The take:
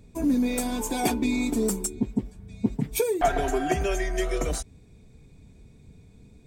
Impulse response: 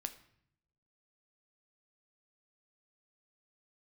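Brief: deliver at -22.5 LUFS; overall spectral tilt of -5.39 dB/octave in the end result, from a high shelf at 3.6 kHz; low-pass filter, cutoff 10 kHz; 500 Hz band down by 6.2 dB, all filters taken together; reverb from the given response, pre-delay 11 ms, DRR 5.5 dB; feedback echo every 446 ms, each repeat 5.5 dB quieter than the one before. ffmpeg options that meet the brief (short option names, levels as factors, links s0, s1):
-filter_complex "[0:a]lowpass=10000,equalizer=f=500:t=o:g=-8.5,highshelf=f=3600:g=-7.5,aecho=1:1:446|892|1338|1784|2230|2676|3122:0.531|0.281|0.149|0.079|0.0419|0.0222|0.0118,asplit=2[s0][s1];[1:a]atrim=start_sample=2205,adelay=11[s2];[s1][s2]afir=irnorm=-1:irlink=0,volume=0.668[s3];[s0][s3]amix=inputs=2:normalize=0,volume=1.78"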